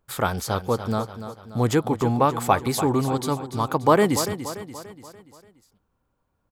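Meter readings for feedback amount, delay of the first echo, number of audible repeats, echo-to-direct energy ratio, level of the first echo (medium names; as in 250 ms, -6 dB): 49%, 290 ms, 4, -10.0 dB, -11.0 dB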